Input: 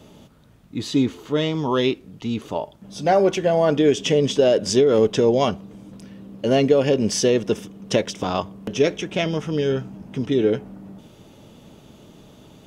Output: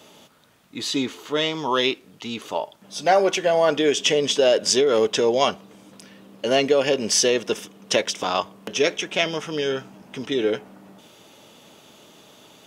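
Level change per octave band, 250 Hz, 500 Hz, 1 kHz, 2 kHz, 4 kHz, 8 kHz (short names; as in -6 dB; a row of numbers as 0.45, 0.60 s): -6.0, -1.5, +1.5, +4.5, +5.0, +5.5 dB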